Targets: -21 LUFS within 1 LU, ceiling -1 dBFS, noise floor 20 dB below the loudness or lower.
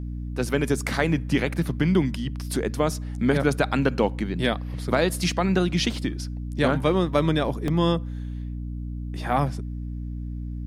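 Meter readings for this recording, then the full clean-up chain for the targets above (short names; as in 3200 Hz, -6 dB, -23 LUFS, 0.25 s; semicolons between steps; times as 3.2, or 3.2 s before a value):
dropouts 1; longest dropout 1.6 ms; hum 60 Hz; harmonics up to 300 Hz; hum level -29 dBFS; loudness -25.0 LUFS; peak -7.0 dBFS; loudness target -21.0 LUFS
-> interpolate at 7.68, 1.6 ms; de-hum 60 Hz, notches 5; gain +4 dB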